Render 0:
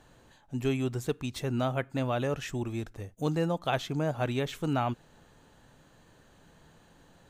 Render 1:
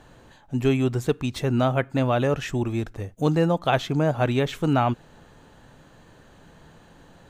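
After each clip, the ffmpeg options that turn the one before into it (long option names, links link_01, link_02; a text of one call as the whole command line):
ffmpeg -i in.wav -af "highshelf=frequency=4400:gain=-6,volume=8dB" out.wav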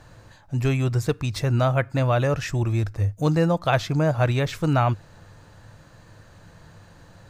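ffmpeg -i in.wav -af "equalizer=frequency=100:width_type=o:width=0.33:gain=11,equalizer=frequency=250:width_type=o:width=0.33:gain=-9,equalizer=frequency=400:width_type=o:width=0.33:gain=-7,equalizer=frequency=800:width_type=o:width=0.33:gain=-4,equalizer=frequency=3150:width_type=o:width=0.33:gain=-6,equalizer=frequency=5000:width_type=o:width=0.33:gain=6,volume=2dB" out.wav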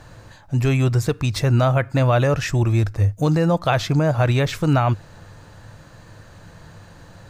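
ffmpeg -i in.wav -af "alimiter=limit=-13.5dB:level=0:latency=1:release=61,volume=5dB" out.wav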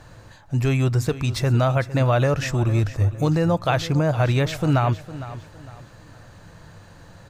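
ffmpeg -i in.wav -af "aecho=1:1:457|914|1371:0.178|0.0605|0.0206,volume=-2dB" out.wav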